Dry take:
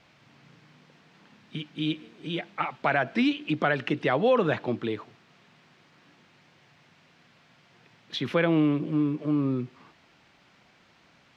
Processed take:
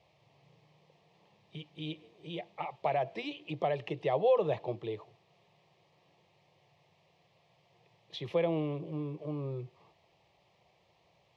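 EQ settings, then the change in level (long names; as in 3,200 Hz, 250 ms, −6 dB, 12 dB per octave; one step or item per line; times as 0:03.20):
high-pass filter 52 Hz
high-shelf EQ 3,800 Hz −11.5 dB
phaser with its sweep stopped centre 610 Hz, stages 4
−2.5 dB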